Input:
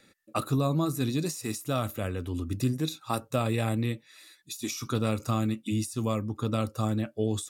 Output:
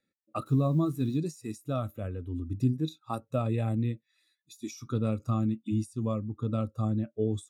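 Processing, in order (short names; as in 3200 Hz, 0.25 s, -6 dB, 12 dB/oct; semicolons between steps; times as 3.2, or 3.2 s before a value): 0.46–1.18 requantised 8-bit, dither triangular; spectral expander 1.5:1; gain -2 dB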